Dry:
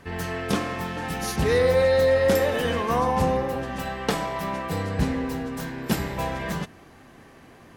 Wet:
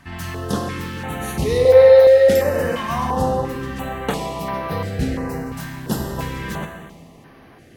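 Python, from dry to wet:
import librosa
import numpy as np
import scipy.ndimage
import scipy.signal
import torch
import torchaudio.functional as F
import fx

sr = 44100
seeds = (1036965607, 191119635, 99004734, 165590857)

y = fx.low_shelf_res(x, sr, hz=350.0, db=-13.5, q=3.0, at=(1.65, 2.29))
y = fx.rev_plate(y, sr, seeds[0], rt60_s=1.6, hf_ratio=0.9, predelay_ms=0, drr_db=3.5)
y = fx.filter_held_notch(y, sr, hz=2.9, low_hz=460.0, high_hz=7600.0)
y = y * librosa.db_to_amplitude(1.5)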